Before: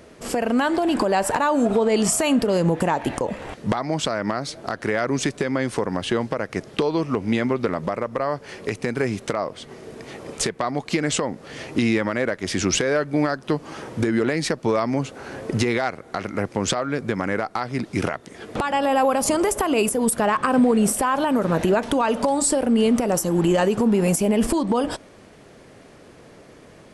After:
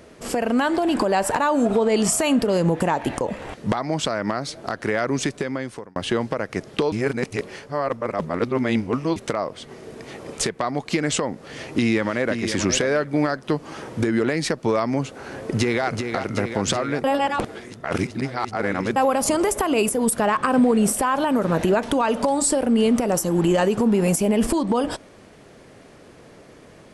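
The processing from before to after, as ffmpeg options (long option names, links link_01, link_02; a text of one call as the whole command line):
ffmpeg -i in.wav -filter_complex "[0:a]asplit=2[link_01][link_02];[link_02]afade=type=in:start_time=11.42:duration=0.01,afade=type=out:start_time=12.39:duration=0.01,aecho=0:1:530|1060:0.398107|0.0597161[link_03];[link_01][link_03]amix=inputs=2:normalize=0,asplit=2[link_04][link_05];[link_05]afade=type=in:start_time=15.21:duration=0.01,afade=type=out:start_time=15.85:duration=0.01,aecho=0:1:380|760|1140|1520|1900|2280|2660|3040|3420|3800|4180|4560:0.473151|0.354863|0.266148|0.199611|0.149708|0.112281|0.0842108|0.0631581|0.0473686|0.0355264|0.0266448|0.0199836[link_06];[link_04][link_06]amix=inputs=2:normalize=0,asplit=6[link_07][link_08][link_09][link_10][link_11][link_12];[link_07]atrim=end=5.96,asetpts=PTS-STARTPTS,afade=type=out:start_time=4.99:duration=0.97:curve=qsin[link_13];[link_08]atrim=start=5.96:end=6.922,asetpts=PTS-STARTPTS,afade=type=in:duration=0.004:curve=hsin[link_14];[link_09]atrim=start=6.918:end=9.162,asetpts=PTS-STARTPTS,areverse[link_15];[link_10]atrim=start=9.158:end=17.042[link_16];[link_11]atrim=start=17.038:end=18.962,asetpts=PTS-STARTPTS,areverse[link_17];[link_12]atrim=start=18.958[link_18];[link_13][link_14]concat=n=2:v=0:a=1[link_19];[link_19][link_15]acrossfade=duration=0.004:curve1=hsin:curve2=hsin[link_20];[link_20][link_16]acrossfade=duration=0.004:curve1=hsin:curve2=hsin[link_21];[link_21][link_17]acrossfade=duration=0.004:curve1=hsin:curve2=hsin[link_22];[link_22][link_18]acrossfade=duration=0.004:curve1=hsin:curve2=hsin" out.wav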